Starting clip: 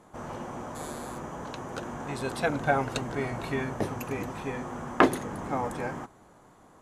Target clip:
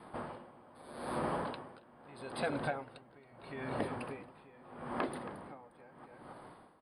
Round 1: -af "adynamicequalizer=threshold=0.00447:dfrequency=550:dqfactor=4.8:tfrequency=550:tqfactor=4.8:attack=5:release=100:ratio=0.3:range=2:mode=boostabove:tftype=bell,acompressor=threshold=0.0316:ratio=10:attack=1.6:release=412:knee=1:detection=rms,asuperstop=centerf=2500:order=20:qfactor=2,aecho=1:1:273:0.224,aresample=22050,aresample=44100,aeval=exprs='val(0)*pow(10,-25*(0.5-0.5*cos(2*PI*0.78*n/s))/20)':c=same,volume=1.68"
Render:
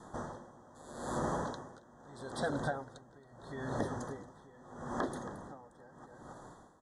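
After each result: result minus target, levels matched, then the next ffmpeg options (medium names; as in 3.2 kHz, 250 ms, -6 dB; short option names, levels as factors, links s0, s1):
8 kHz band +5.5 dB; 125 Hz band +3.0 dB
-af "adynamicequalizer=threshold=0.00447:dfrequency=550:dqfactor=4.8:tfrequency=550:tqfactor=4.8:attack=5:release=100:ratio=0.3:range=2:mode=boostabove:tftype=bell,acompressor=threshold=0.0316:ratio=10:attack=1.6:release=412:knee=1:detection=rms,asuperstop=centerf=6500:order=20:qfactor=2,aecho=1:1:273:0.224,aresample=22050,aresample=44100,aeval=exprs='val(0)*pow(10,-25*(0.5-0.5*cos(2*PI*0.78*n/s))/20)':c=same,volume=1.68"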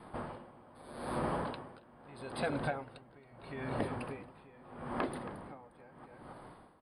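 125 Hz band +2.5 dB
-af "adynamicequalizer=threshold=0.00447:dfrequency=550:dqfactor=4.8:tfrequency=550:tqfactor=4.8:attack=5:release=100:ratio=0.3:range=2:mode=boostabove:tftype=bell,acompressor=threshold=0.0316:ratio=10:attack=1.6:release=412:knee=1:detection=rms,asuperstop=centerf=6500:order=20:qfactor=2,lowshelf=f=100:g=-9.5,aecho=1:1:273:0.224,aresample=22050,aresample=44100,aeval=exprs='val(0)*pow(10,-25*(0.5-0.5*cos(2*PI*0.78*n/s))/20)':c=same,volume=1.68"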